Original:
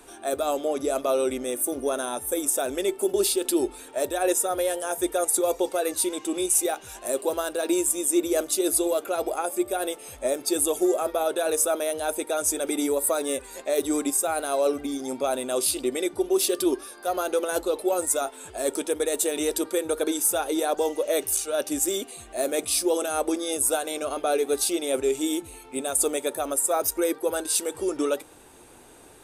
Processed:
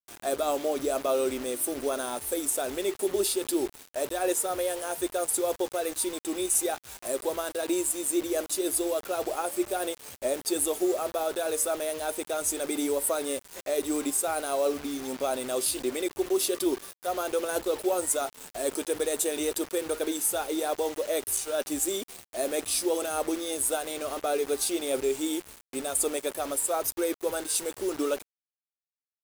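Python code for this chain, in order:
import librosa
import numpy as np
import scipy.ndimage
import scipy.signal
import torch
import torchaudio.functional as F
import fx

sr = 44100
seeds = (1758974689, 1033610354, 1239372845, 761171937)

y = fx.rider(x, sr, range_db=4, speed_s=2.0)
y = fx.quant_dither(y, sr, seeds[0], bits=6, dither='none')
y = y * 10.0 ** (-4.0 / 20.0)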